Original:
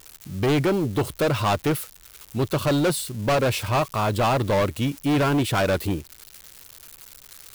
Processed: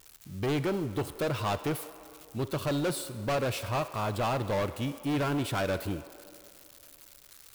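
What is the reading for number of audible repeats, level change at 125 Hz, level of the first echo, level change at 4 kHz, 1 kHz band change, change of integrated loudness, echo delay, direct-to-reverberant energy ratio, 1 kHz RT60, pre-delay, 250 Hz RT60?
none, -8.5 dB, none, -8.5 dB, -8.5 dB, -8.5 dB, none, 12.0 dB, 2.3 s, 35 ms, 2.9 s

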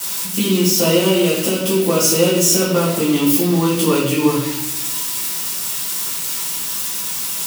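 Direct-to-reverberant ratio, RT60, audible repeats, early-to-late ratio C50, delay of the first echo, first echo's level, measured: -9.0 dB, 0.80 s, none, 3.0 dB, none, none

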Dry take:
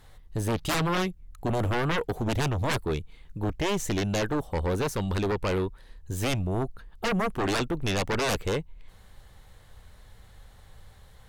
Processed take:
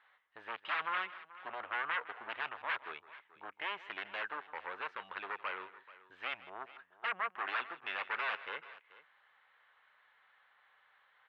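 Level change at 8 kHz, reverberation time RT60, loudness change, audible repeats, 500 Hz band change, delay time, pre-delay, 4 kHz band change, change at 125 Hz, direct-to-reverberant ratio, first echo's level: under -40 dB, none, -11.0 dB, 2, -21.0 dB, 0.159 s, none, -12.0 dB, under -40 dB, none, -17.0 dB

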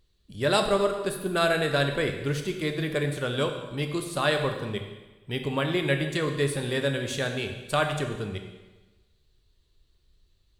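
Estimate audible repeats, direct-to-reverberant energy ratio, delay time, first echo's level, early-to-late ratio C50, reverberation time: none, 4.5 dB, none, none, 7.0 dB, 1.2 s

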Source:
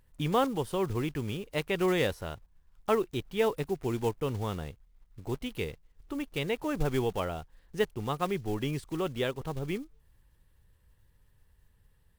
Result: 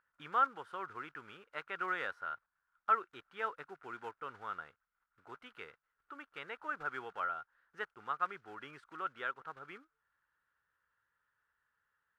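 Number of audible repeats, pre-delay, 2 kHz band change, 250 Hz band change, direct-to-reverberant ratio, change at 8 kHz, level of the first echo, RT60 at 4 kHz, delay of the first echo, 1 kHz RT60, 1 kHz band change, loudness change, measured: none, none, -2.0 dB, -23.0 dB, none, under -20 dB, none, none, none, none, -1.0 dB, -7.5 dB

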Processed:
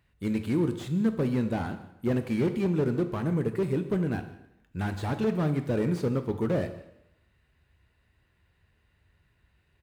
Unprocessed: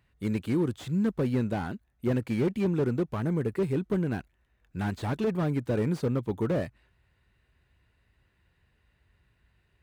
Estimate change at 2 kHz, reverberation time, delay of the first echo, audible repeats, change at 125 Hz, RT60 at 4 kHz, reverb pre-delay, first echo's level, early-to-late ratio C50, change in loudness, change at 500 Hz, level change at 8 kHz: +0.5 dB, 0.80 s, 0.159 s, 1, +0.5 dB, 0.75 s, 4 ms, -20.5 dB, 10.5 dB, +0.5 dB, +0.5 dB, n/a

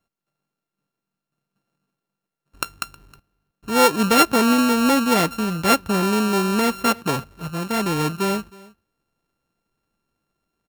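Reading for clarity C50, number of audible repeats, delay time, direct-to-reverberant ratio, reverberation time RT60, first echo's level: none, 1, 0.315 s, none, none, -23.0 dB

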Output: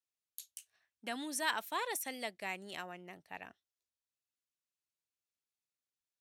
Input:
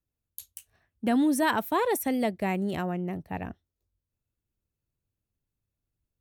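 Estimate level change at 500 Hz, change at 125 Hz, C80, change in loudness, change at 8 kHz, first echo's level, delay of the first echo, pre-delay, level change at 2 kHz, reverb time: -15.5 dB, -24.5 dB, none, -12.0 dB, -3.5 dB, none, none, none, -5.5 dB, none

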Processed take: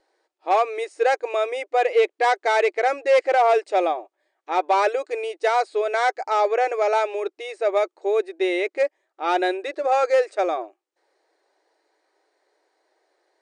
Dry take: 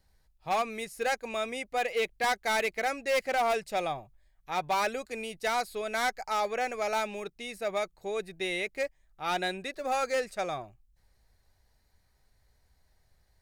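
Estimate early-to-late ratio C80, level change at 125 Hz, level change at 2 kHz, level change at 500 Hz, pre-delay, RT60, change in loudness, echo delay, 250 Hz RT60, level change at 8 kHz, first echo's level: none, under -30 dB, +5.5 dB, +11.5 dB, none, none, +9.5 dB, none, none, n/a, none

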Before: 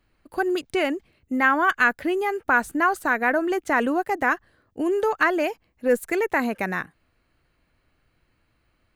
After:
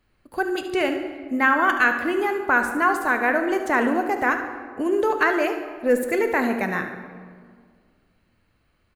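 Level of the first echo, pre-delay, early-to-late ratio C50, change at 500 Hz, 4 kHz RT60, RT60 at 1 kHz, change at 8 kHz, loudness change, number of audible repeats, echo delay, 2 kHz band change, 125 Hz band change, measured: -11.5 dB, 3 ms, 7.0 dB, +1.5 dB, 1.1 s, 1.8 s, +1.0 dB, +1.0 dB, 2, 72 ms, +1.5 dB, n/a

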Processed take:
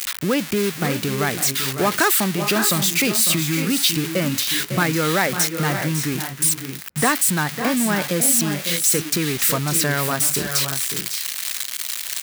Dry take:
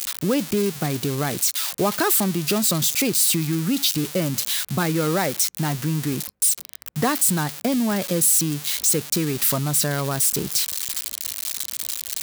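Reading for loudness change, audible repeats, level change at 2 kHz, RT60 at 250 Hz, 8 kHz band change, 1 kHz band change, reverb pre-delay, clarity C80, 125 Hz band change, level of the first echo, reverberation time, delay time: +1.5 dB, 2, +8.0 dB, none, +1.5 dB, +4.0 dB, none, none, +1.0 dB, -10.5 dB, none, 0.552 s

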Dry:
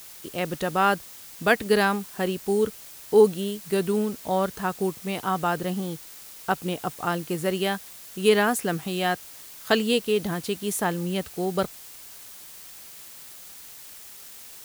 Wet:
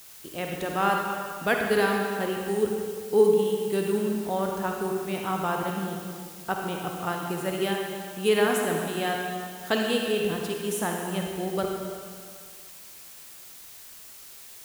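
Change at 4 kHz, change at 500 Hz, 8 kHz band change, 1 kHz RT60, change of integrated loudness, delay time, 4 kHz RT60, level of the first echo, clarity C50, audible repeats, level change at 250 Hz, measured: -2.5 dB, -1.0 dB, -2.0 dB, 2.1 s, -2.0 dB, none, 2.0 s, none, 1.0 dB, none, -2.0 dB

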